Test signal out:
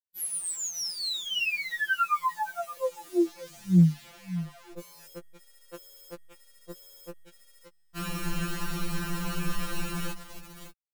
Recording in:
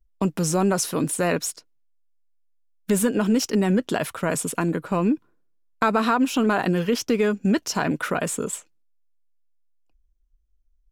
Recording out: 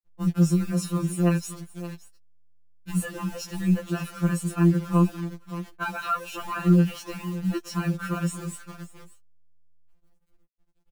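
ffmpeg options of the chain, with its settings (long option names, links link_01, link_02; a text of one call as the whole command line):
ffmpeg -i in.wav -filter_complex "[0:a]bass=frequency=250:gain=4,treble=frequency=4000:gain=-9,aecho=1:1:5.1:0.61,aecho=1:1:573:0.188,acrossover=split=400|6700[link_01][link_02][link_03];[link_03]acontrast=26[link_04];[link_01][link_02][link_04]amix=inputs=3:normalize=0,asoftclip=type=tanh:threshold=-6.5dB,acrusher=bits=7:dc=4:mix=0:aa=0.000001,afftfilt=real='re*2.83*eq(mod(b,8),0)':imag='im*2.83*eq(mod(b,8),0)':win_size=2048:overlap=0.75,volume=-5dB" out.wav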